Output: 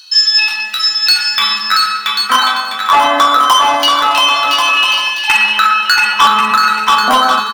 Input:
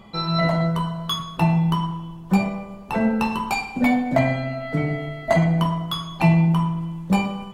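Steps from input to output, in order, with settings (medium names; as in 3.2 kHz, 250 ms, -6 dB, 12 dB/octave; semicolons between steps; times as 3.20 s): de-hum 45.2 Hz, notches 19; LFO high-pass saw down 0.27 Hz 490–3500 Hz; pitch shift +4.5 st; hard clipper -18 dBFS, distortion -15 dB; on a send: bouncing-ball echo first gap 680 ms, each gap 0.6×, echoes 5; on the sum: loudness maximiser +17 dB; trim -1 dB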